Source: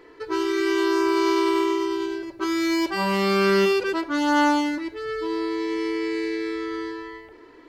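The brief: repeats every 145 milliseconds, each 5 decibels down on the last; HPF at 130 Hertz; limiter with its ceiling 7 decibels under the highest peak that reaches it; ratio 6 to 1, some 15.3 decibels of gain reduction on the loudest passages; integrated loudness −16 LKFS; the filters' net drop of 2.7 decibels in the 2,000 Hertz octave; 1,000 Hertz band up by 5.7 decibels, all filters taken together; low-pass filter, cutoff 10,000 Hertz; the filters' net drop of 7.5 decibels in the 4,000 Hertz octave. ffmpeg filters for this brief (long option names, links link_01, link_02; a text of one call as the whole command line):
ffmpeg -i in.wav -af "highpass=130,lowpass=10000,equalizer=frequency=1000:width_type=o:gain=8,equalizer=frequency=2000:width_type=o:gain=-5.5,equalizer=frequency=4000:width_type=o:gain=-8.5,acompressor=threshold=-31dB:ratio=6,alimiter=level_in=4.5dB:limit=-24dB:level=0:latency=1,volume=-4.5dB,aecho=1:1:145|290|435|580|725|870|1015:0.562|0.315|0.176|0.0988|0.0553|0.031|0.0173,volume=19dB" out.wav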